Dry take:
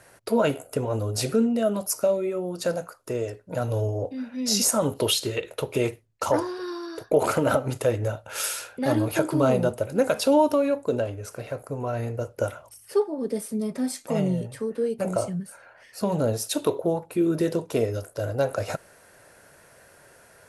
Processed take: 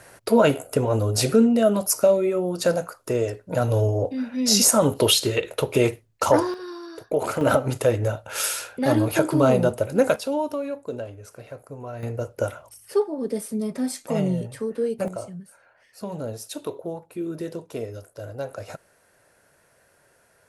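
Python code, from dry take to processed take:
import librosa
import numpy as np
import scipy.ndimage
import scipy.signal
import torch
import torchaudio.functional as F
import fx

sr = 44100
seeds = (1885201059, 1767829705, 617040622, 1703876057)

y = fx.gain(x, sr, db=fx.steps((0.0, 5.0), (6.54, -3.0), (7.41, 3.0), (10.16, -6.5), (12.03, 1.0), (15.08, -7.5)))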